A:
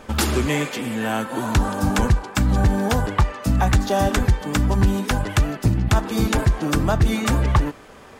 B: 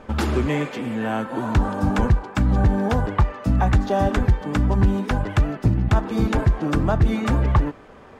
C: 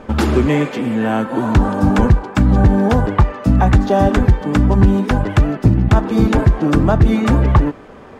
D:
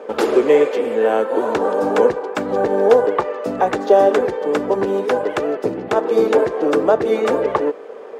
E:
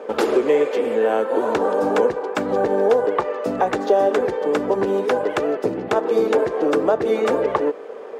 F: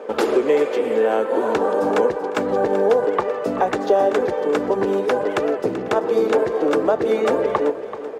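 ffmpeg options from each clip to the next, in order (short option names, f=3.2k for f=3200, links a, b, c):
-af "lowpass=f=1.6k:p=1"
-af "equalizer=f=270:w=0.62:g=3.5,volume=5dB"
-af "highpass=f=460:t=q:w=4.9,volume=-3dB"
-af "acompressor=threshold=-16dB:ratio=2"
-af "aecho=1:1:384|768|1152|1536:0.224|0.0828|0.0306|0.0113"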